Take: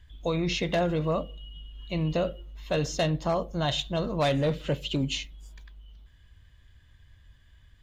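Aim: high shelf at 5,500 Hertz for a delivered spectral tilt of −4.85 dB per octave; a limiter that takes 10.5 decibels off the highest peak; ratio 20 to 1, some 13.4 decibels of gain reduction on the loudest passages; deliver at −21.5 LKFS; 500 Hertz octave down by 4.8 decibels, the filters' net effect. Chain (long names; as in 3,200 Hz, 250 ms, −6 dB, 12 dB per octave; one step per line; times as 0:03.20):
parametric band 500 Hz −6 dB
high-shelf EQ 5,500 Hz +3 dB
downward compressor 20 to 1, threshold −37 dBFS
level +24 dB
brickwall limiter −12 dBFS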